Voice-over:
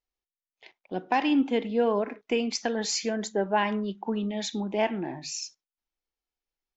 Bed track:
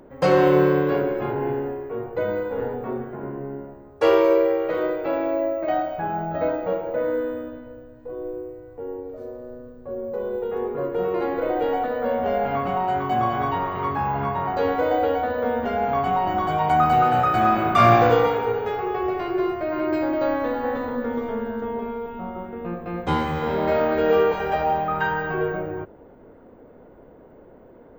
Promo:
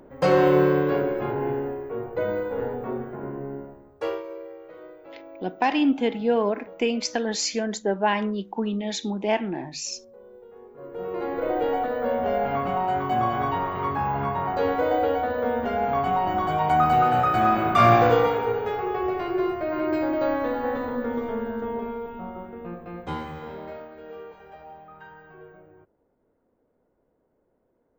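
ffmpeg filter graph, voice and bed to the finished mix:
-filter_complex "[0:a]adelay=4500,volume=1.33[s0];[1:a]volume=7.08,afade=t=out:st=3.58:d=0.65:silence=0.11885,afade=t=in:st=10.74:d=0.78:silence=0.11885,afade=t=out:st=21.76:d=2.14:silence=0.0891251[s1];[s0][s1]amix=inputs=2:normalize=0"

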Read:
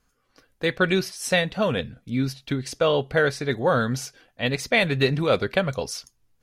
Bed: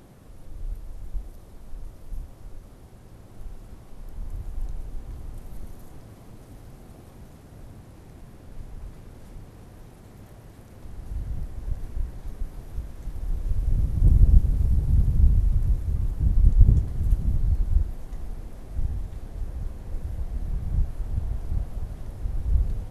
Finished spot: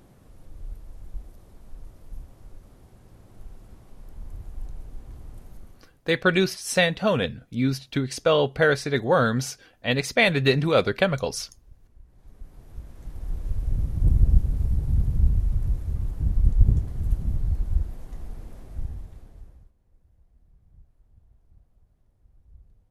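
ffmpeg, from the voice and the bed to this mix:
-filter_complex "[0:a]adelay=5450,volume=1.12[s0];[1:a]volume=5.96,afade=t=out:st=5.4:d=0.62:silence=0.133352,afade=t=in:st=12.06:d=1.25:silence=0.105925,afade=t=out:st=18.53:d=1.19:silence=0.0446684[s1];[s0][s1]amix=inputs=2:normalize=0"

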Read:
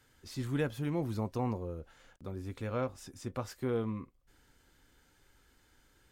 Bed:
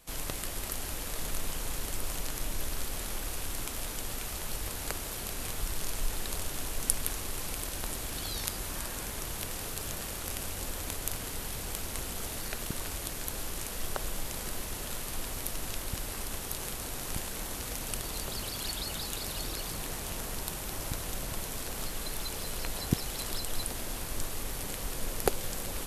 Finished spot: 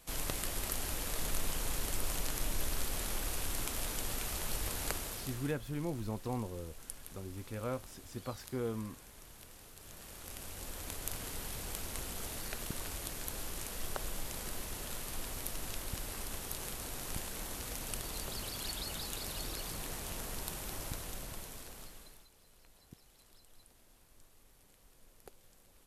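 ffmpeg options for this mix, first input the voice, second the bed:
-filter_complex "[0:a]adelay=4900,volume=0.631[s0];[1:a]volume=3.98,afade=t=out:st=4.87:d=0.7:silence=0.149624,afade=t=in:st=9.76:d=1.49:silence=0.223872,afade=t=out:st=20.7:d=1.58:silence=0.0707946[s1];[s0][s1]amix=inputs=2:normalize=0"

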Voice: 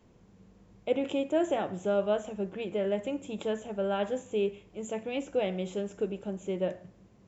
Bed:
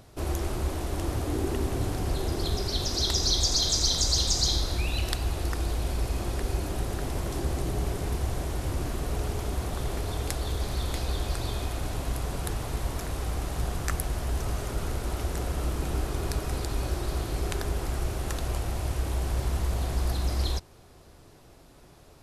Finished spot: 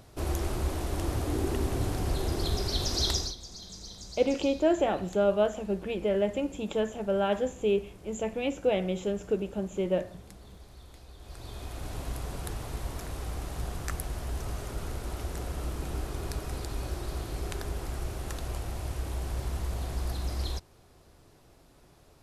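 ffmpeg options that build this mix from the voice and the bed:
-filter_complex "[0:a]adelay=3300,volume=1.41[s0];[1:a]volume=5.31,afade=t=out:st=3.1:d=0.25:silence=0.105925,afade=t=in:st=11.18:d=0.81:silence=0.16788[s1];[s0][s1]amix=inputs=2:normalize=0"

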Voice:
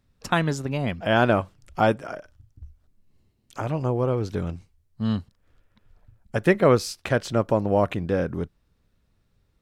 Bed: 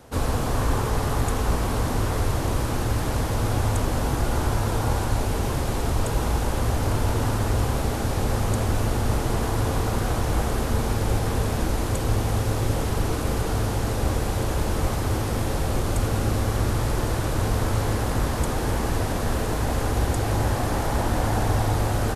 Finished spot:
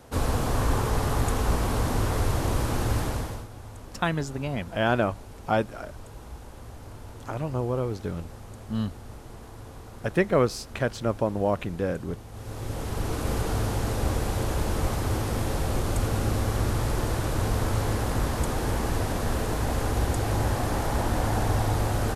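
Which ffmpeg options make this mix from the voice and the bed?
-filter_complex "[0:a]adelay=3700,volume=0.631[s0];[1:a]volume=5.96,afade=t=out:st=2.97:d=0.5:silence=0.125893,afade=t=in:st=12.31:d=1.03:silence=0.141254[s1];[s0][s1]amix=inputs=2:normalize=0"

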